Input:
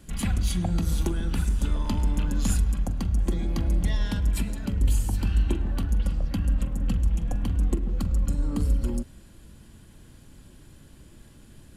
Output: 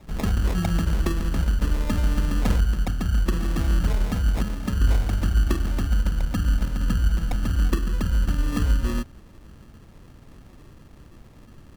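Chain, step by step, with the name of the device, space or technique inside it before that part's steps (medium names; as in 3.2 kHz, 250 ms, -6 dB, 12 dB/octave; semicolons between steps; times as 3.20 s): crushed at another speed (playback speed 0.8×; sample-and-hold 37×; playback speed 1.25×); trim +2.5 dB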